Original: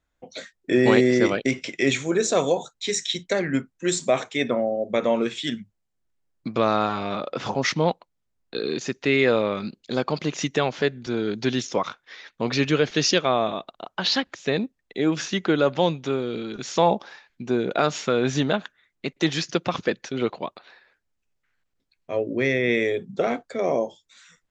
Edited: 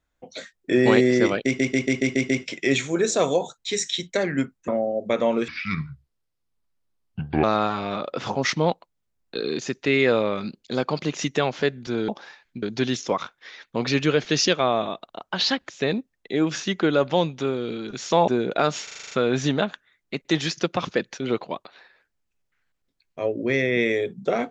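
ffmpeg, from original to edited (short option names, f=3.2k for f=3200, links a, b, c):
-filter_complex "[0:a]asplit=20[a][b][c][d][e][f][g][h][i][j][k][l][m][n][o][p][q][r][s][t];[a]atrim=end=1.592[u];[b]atrim=start=1.448:end=1.592[v];[c]atrim=start=1.448:end=1.592[w];[d]atrim=start=1.448:end=1.592[x];[e]atrim=start=1.448:end=1.592[y];[f]atrim=start=1.448:end=1.592[z];[g]atrim=start=1.448:end=3.842[aa];[h]atrim=start=4.518:end=5.324[ab];[i]atrim=start=5.32:end=6.63,asetpts=PTS-STARTPTS,asetrate=29547,aresample=44100,atrim=end_sample=86225,asetpts=PTS-STARTPTS[ac];[j]atrim=start=6.626:end=11.282[ad];[k]atrim=start=16.928:end=17.472[ae];[l]atrim=start=11.278:end=16.932[af];[m]atrim=start=17.468:end=18.072[ag];[n]atrim=start=18.028:end=18.072[ah];[o]atrim=start=18.028:end=18.072[ai];[p]atrim=start=18.028:end=18.072[aj];[q]atrim=start=18.028:end=18.072[ak];[r]atrim=start=18.028:end=18.072[al];[s]atrim=start=18.028:end=18.072[am];[t]atrim=start=18.028[an];[u][v]acrossfade=d=0.004:c1=hsin:c2=hsin[ao];[ao][w]acrossfade=d=0.004:c1=hsin:c2=hsin[ap];[ap][x]acrossfade=d=0.004:c1=hsin:c2=hsin[aq];[aq][y]acrossfade=d=0.004:c1=hsin:c2=hsin[ar];[ar][z]acrossfade=d=0.004:c1=hsin:c2=hsin[as];[as][aa]acrossfade=d=0.004:c1=hsin:c2=hsin[at];[at][ab]acrossfade=d=0.004:c1=hsin:c2=hsin[au];[au][ac]acrossfade=d=0.004:c1=hsin:c2=hsin[av];[av][ad]acrossfade=d=0.004:c1=hsin:c2=hsin[aw];[aw][ae]acrossfade=d=0.004:c1=hsin:c2=hsin[ax];[ax][af]acrossfade=d=0.004:c1=hsin:c2=hsin[ay];[ay][ag]acrossfade=d=0.004:c1=hsin:c2=hsin[az];[az][ah]acrossfade=d=0.004:c1=hsin:c2=hsin[ba];[ba][ai]acrossfade=d=0.004:c1=hsin:c2=hsin[bb];[bb][aj]acrossfade=d=0.004:c1=hsin:c2=hsin[bc];[bc][ak]acrossfade=d=0.004:c1=hsin:c2=hsin[bd];[bd][al]acrossfade=d=0.004:c1=hsin:c2=hsin[be];[be][am]acrossfade=d=0.004:c1=hsin:c2=hsin[bf];[bf][an]acrossfade=d=0.004:c1=hsin:c2=hsin"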